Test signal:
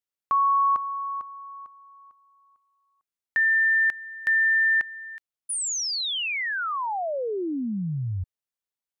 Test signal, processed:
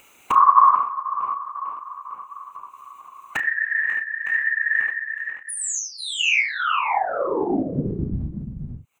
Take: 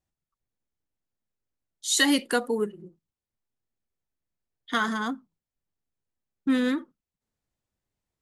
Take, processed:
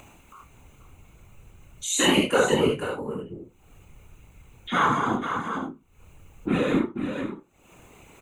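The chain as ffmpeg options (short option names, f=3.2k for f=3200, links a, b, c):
-filter_complex "[0:a]asplit=2[a][b];[b]aecho=0:1:486:0.316[c];[a][c]amix=inputs=2:normalize=0,flanger=delay=16.5:depth=3.1:speed=2,equalizer=f=380:w=0.61:g=8.5,asplit=2[d][e];[e]aecho=0:1:30|73:0.631|0.668[f];[d][f]amix=inputs=2:normalize=0,acompressor=mode=upward:threshold=-23dB:ratio=2.5:attack=6.2:release=244:knee=2.83:detection=peak,superequalizer=9b=2:10b=2.24:12b=3.55:14b=0.316:15b=1.58,afftfilt=real='hypot(re,im)*cos(2*PI*random(0))':imag='hypot(re,im)*sin(2*PI*random(1))':win_size=512:overlap=0.75,asplit=2[g][h];[h]adelay=34,volume=-12dB[i];[g][i]amix=inputs=2:normalize=0,volume=3.5dB"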